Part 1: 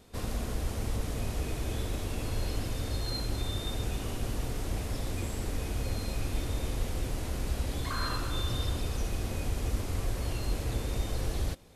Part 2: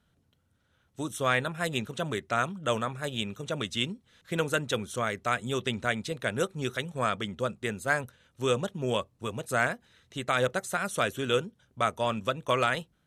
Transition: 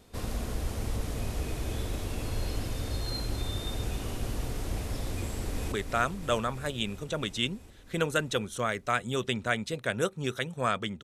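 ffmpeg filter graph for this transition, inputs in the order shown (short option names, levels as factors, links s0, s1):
-filter_complex "[0:a]apad=whole_dur=11.03,atrim=end=11.03,atrim=end=5.722[s0];[1:a]atrim=start=2.098:end=7.41[s1];[s0][s1]acrossfade=d=0.004:c1=hsin:c2=hsin,asplit=2[s2][s3];[s3]afade=t=in:st=5.23:d=0.01,afade=t=out:st=5.72:d=0.01,aecho=0:1:330|660|990|1320|1650|1980|2310|2640|2970|3300|3630|3960:0.473151|0.354863|0.266148|0.199611|0.149708|0.112281|0.0842108|0.0631581|0.0473686|0.0355264|0.0266448|0.0199836[s4];[s2][s4]amix=inputs=2:normalize=0"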